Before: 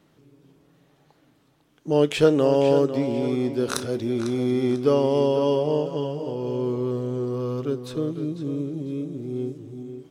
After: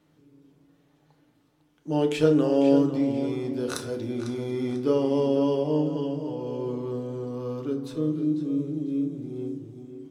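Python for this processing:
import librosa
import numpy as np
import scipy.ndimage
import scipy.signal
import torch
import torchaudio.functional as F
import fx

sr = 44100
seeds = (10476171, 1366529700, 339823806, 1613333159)

y = fx.rev_fdn(x, sr, rt60_s=0.53, lf_ratio=1.6, hf_ratio=0.65, size_ms=20.0, drr_db=4.0)
y = y * librosa.db_to_amplitude(-6.5)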